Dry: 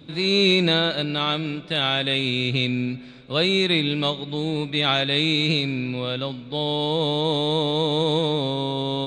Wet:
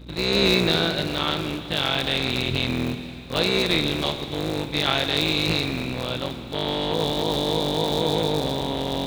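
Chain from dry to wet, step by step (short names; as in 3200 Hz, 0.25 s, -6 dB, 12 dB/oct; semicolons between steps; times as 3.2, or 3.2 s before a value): cycle switcher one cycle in 3, muted; hum 60 Hz, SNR 18 dB; Schroeder reverb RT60 2.9 s, combs from 33 ms, DRR 9 dB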